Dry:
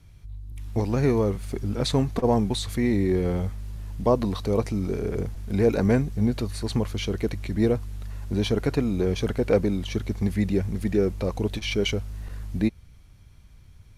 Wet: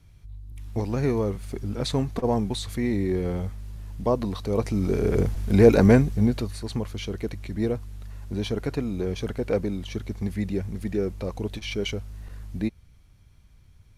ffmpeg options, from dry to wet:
-af "volume=2,afade=t=in:st=4.49:d=0.7:silence=0.375837,afade=t=out:st=5.78:d=0.83:silence=0.316228"

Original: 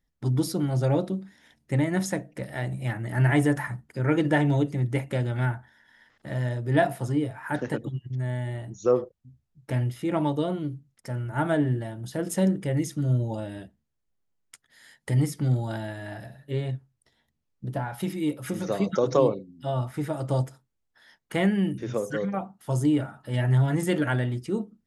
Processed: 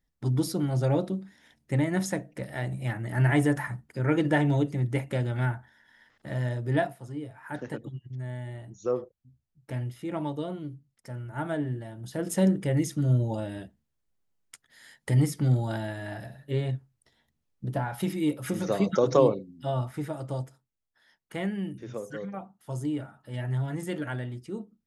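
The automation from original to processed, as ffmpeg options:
-af "volume=4.47,afade=t=out:st=6.7:d=0.25:silence=0.237137,afade=t=in:st=6.95:d=0.72:silence=0.421697,afade=t=in:st=11.85:d=0.63:silence=0.446684,afade=t=out:st=19.5:d=0.89:silence=0.375837"

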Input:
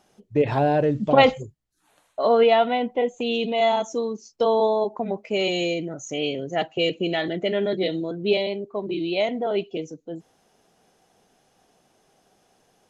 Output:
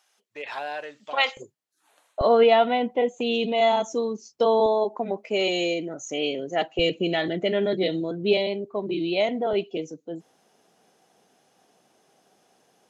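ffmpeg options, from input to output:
-af "asetnsamples=n=441:p=0,asendcmd='1.37 highpass f 400;2.21 highpass f 98;4.66 highpass f 230;6.79 highpass f 57;9.53 highpass f 160',highpass=1300"

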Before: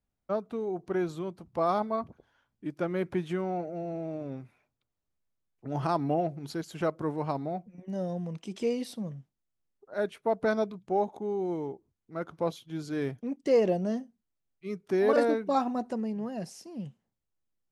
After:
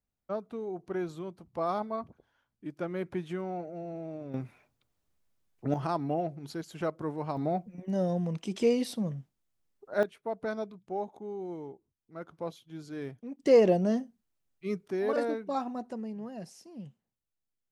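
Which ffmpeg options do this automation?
-af "asetnsamples=n=441:p=0,asendcmd='4.34 volume volume 7dB;5.74 volume volume -3dB;7.37 volume volume 4dB;10.03 volume volume -7dB;13.39 volume volume 3dB;14.88 volume volume -5.5dB',volume=0.631"

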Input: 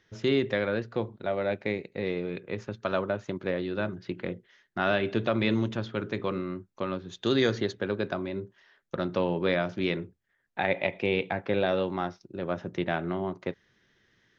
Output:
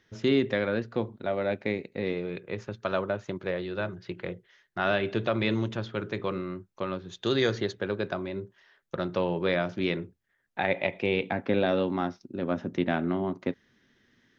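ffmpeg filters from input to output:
-af "asetnsamples=n=441:p=0,asendcmd='2.13 equalizer g -4.5;3.44 equalizer g -13.5;4.85 equalizer g -5;9.54 equalizer g 1;11.23 equalizer g 12',equalizer=f=250:t=o:w=0.38:g=4.5"

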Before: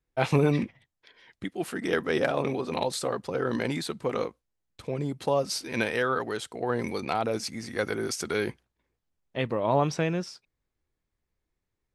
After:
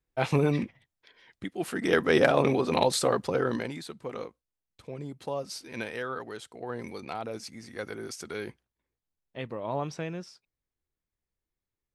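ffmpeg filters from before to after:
-af "volume=1.68,afade=t=in:st=1.51:d=0.64:silence=0.473151,afade=t=out:st=3.23:d=0.48:silence=0.237137"

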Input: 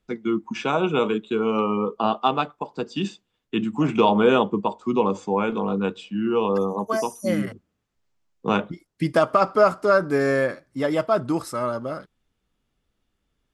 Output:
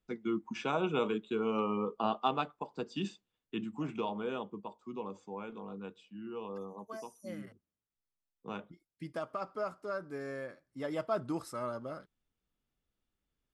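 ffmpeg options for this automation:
-af "volume=0.794,afade=t=out:st=3.06:d=1.1:silence=0.316228,afade=t=in:st=10.46:d=0.67:silence=0.398107"

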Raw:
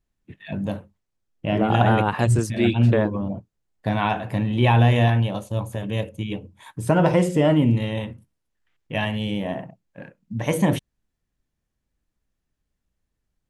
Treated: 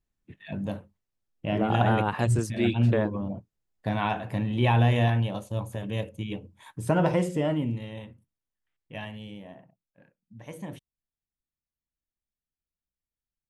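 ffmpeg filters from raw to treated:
-af "volume=0.562,afade=t=out:st=6.98:d=0.83:silence=0.421697,afade=t=out:st=8.94:d=0.62:silence=0.473151"

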